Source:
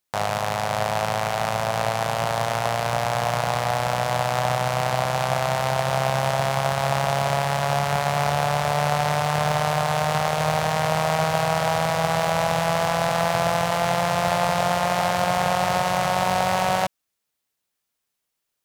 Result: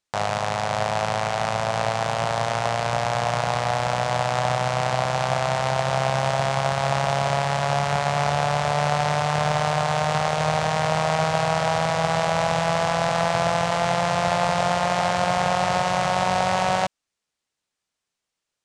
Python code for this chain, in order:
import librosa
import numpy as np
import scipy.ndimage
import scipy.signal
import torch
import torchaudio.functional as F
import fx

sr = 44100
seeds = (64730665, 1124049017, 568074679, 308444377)

y = scipy.signal.sosfilt(scipy.signal.butter(4, 8500.0, 'lowpass', fs=sr, output='sos'), x)